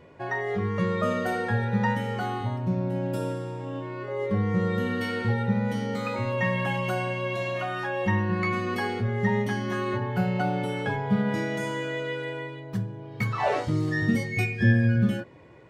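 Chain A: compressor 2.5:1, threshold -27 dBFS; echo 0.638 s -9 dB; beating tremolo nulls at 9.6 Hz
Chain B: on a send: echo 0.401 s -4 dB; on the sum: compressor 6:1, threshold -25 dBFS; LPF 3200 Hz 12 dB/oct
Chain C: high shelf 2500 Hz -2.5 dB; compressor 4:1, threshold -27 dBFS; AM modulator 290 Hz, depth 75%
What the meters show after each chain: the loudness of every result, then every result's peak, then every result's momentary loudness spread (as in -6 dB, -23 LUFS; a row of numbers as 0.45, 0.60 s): -33.0, -30.0, -35.0 LUFS; -16.0, -16.5, -18.5 dBFS; 4, 3, 4 LU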